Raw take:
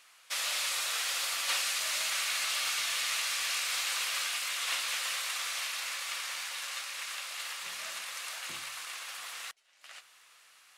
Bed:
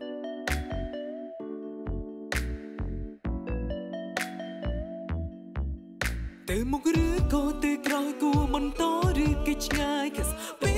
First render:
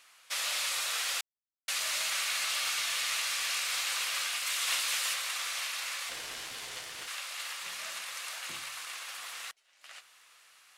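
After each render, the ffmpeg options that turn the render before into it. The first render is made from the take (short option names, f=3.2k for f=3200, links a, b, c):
-filter_complex "[0:a]asettb=1/sr,asplit=3[a][b][c];[a]atrim=end=4.464[d];[b]atrim=start=4.46:end=5.14,asetpts=PTS-STARTPTS,afade=t=in:d=0.004:c=qsin,afade=t=out:st=0.676:d=0.004:c=qsin,highshelf=f=4.4k:g=5[e];[c]atrim=start=5.136[f];[d][e]acrossfade=d=0.004:c1=hsin:c2=qsin[g];[g][f]acrossfade=d=0.004:c1=qsin:c2=hsin,asettb=1/sr,asplit=3[h][i][j];[h]atrim=end=6.094[k];[i]atrim=start=6.09:end=7.08,asetpts=PTS-STARTPTS,afade=t=in:d=0.004:c=qsin,afade=t=out:st=0.986:d=0.004:c=qsin,aeval=exprs='val(0)*sin(2*PI*670*n/s)':c=same[l];[j]atrim=start=7.076[m];[k][l]acrossfade=d=0.004:c1=hsin:c2=qsin[n];[n][m]acrossfade=d=0.004:c1=qsin:c2=hsin,asplit=3[o][p][q];[o]atrim=end=1.21,asetpts=PTS-STARTPTS,afade=t=out:st=1.206:d=0.004:c=hsin[r];[p]atrim=start=1.21:end=1.68,asetpts=PTS-STARTPTS,volume=0[s];[q]atrim=start=1.68,asetpts=PTS-STARTPTS,afade=t=in:d=0.004:c=hsin[t];[r][s][t]concat=n=3:v=0:a=1"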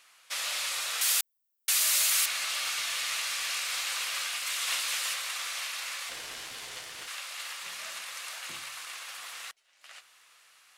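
-filter_complex "[0:a]asettb=1/sr,asplit=3[a][b][c];[a]atrim=end=1.014[d];[b]atrim=start=1.01:end=2.26,asetpts=PTS-STARTPTS,afade=t=in:d=0.004:c=qsin,afade=t=out:st=1.246:d=0.004:c=qsin,aemphasis=mode=production:type=bsi[e];[c]atrim=start=2.256[f];[d][e]acrossfade=d=0.004:c1=hsin:c2=qsin[g];[g][f]acrossfade=d=0.004:c1=qsin:c2=hsin"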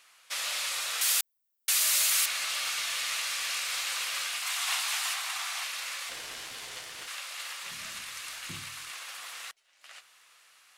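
-filter_complex "[0:a]asettb=1/sr,asplit=3[a][b][c];[a]atrim=end=4.424[d];[b]atrim=start=4.42:end=5.64,asetpts=PTS-STARTPTS,afade=t=in:d=0.004:c=qsin,afade=t=out:st=1.216:d=0.004:c=qsin,lowshelf=f=570:t=q:w=3:g=-10[e];[c]atrim=start=5.636[f];[d][e]acrossfade=d=0.004:c1=hsin:c2=qsin[g];[g][f]acrossfade=d=0.004:c1=qsin:c2=hsin,asplit=3[h][i][j];[h]afade=t=out:st=7.7:d=0.02[k];[i]asubboost=boost=9:cutoff=190,afade=t=in:st=7.7:d=0.02,afade=t=out:st=8.9:d=0.02[l];[j]afade=t=in:st=8.9:d=0.02[m];[k][l][m]amix=inputs=3:normalize=0"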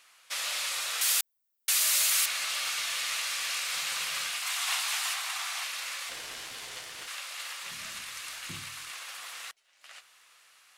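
-filter_complex "[0:a]asettb=1/sr,asplit=3[a][b][c];[a]atrim=end=3.744[d];[b]atrim=start=3.74:end=4.31,asetpts=PTS-STARTPTS,afade=t=in:d=0.004:c=qsin,afade=t=out:st=0.566:d=0.004:c=qsin,equalizer=f=150:w=1.5:g=14.5[e];[c]atrim=start=4.306[f];[d][e]acrossfade=d=0.004:c1=hsin:c2=qsin[g];[g][f]acrossfade=d=0.004:c1=qsin:c2=hsin"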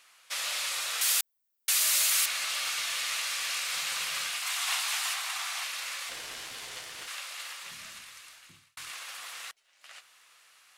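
-filter_complex "[0:a]asplit=2[a][b];[a]atrim=end=8.77,asetpts=PTS-STARTPTS,afade=t=out:st=7.2:d=1.57[c];[b]atrim=start=8.77,asetpts=PTS-STARTPTS,afade=t=in:d=0.004:c=hsin[d];[c][d]concat=n=2:v=0:a=1"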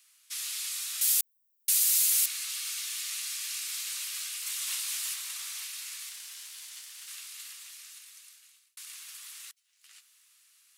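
-af "highpass=f=810:w=0.5412,highpass=f=810:w=1.3066,aderivative"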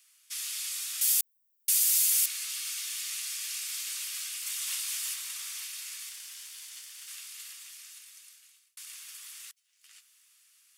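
-af "highpass=f=920:p=1,bandreject=f=4k:w=17"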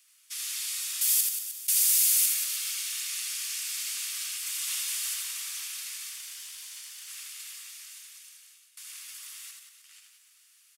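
-af "aecho=1:1:80|180|305|461.2|656.6:0.631|0.398|0.251|0.158|0.1"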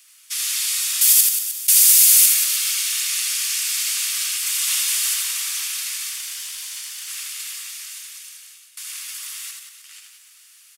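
-af "volume=11dB,alimiter=limit=-1dB:level=0:latency=1"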